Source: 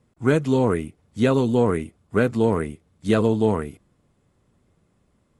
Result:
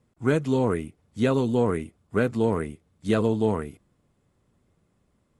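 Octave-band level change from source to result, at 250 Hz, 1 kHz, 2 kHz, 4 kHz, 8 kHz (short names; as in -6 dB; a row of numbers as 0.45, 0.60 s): -3.5, -3.5, -3.5, -3.5, -3.5 dB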